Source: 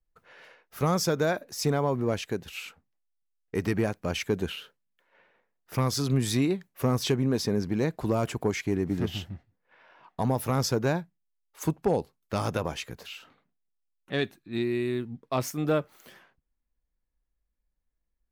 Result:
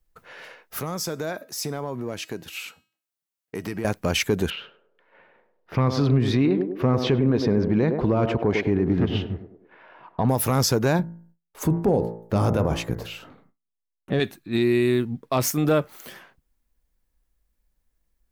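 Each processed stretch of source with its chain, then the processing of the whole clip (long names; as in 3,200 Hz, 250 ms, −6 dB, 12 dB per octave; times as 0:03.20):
0:00.80–0:03.85: high-pass filter 110 Hz + downward compressor 2.5 to 1, threshold −32 dBFS + tuned comb filter 320 Hz, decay 0.44 s, mix 50%
0:04.50–0:10.29: high-frequency loss of the air 300 metres + feedback echo with a band-pass in the loop 101 ms, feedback 55%, band-pass 440 Hz, level −7 dB
0:10.99–0:14.20: hum removal 56.26 Hz, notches 38 + noise gate with hold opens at −54 dBFS, closes at −64 dBFS + tilt shelving filter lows +7.5 dB, about 1,100 Hz
whole clip: high-shelf EQ 8,900 Hz +5.5 dB; brickwall limiter −21.5 dBFS; level +9 dB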